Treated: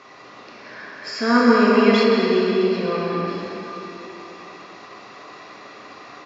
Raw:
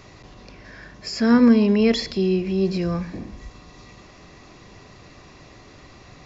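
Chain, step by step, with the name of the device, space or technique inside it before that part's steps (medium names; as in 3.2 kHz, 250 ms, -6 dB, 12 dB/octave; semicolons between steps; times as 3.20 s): station announcement (band-pass 330–4800 Hz; peaking EQ 1.2 kHz +7 dB 0.56 oct; loudspeakers at several distances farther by 65 m -9 dB, 86 m -11 dB; reverberation RT60 3.5 s, pre-delay 3 ms, DRR -5 dB); 2.03–3.28 s: treble shelf 5.4 kHz -11 dB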